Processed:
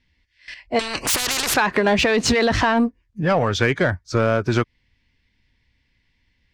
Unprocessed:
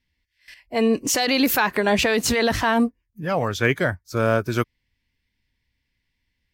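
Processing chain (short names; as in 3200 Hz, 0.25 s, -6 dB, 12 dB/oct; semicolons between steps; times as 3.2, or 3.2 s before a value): Bessel low-pass 5200 Hz, order 4; compressor 10:1, threshold -21 dBFS, peak gain reduction 7.5 dB; in parallel at -3 dB: soft clip -26 dBFS, distortion -9 dB; 0.79–1.54 on the sum: spectral compressor 10:1; gain +4.5 dB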